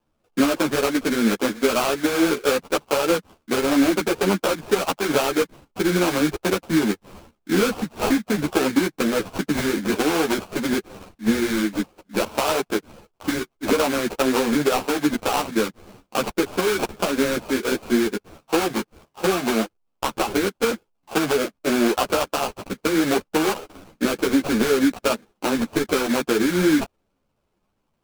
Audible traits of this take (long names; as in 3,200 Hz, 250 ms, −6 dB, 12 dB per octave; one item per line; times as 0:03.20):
aliases and images of a low sample rate 1,900 Hz, jitter 20%
a shimmering, thickened sound